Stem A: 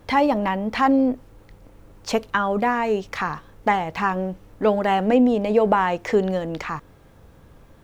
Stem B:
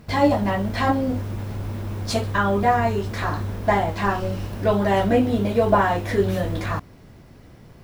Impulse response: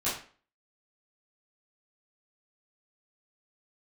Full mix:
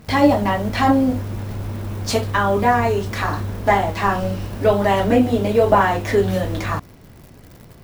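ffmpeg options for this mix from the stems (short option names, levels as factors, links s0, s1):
-filter_complex "[0:a]aemphasis=mode=production:type=50kf,acrusher=bits=6:mix=0:aa=0.000001,volume=0.708[s0];[1:a]volume=1.26[s1];[s0][s1]amix=inputs=2:normalize=0"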